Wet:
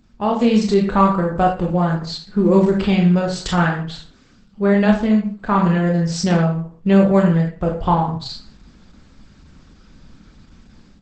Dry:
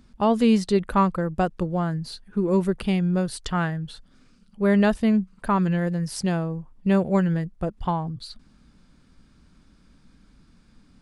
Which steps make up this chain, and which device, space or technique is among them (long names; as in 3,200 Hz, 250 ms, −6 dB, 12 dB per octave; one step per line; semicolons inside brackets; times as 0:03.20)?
speakerphone in a meeting room (convolution reverb RT60 0.45 s, pre-delay 20 ms, DRR 0 dB; automatic gain control gain up to 9 dB; level −1 dB; Opus 12 kbit/s 48,000 Hz)